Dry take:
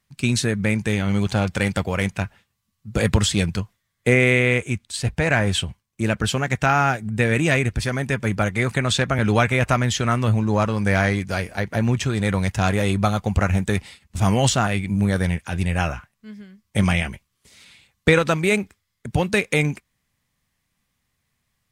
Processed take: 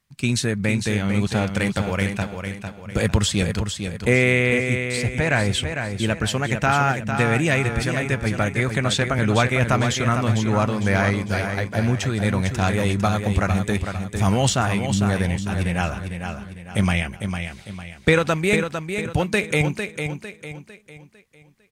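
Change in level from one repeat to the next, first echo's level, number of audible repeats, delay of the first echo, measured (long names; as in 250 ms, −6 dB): −8.0 dB, −7.0 dB, 4, 452 ms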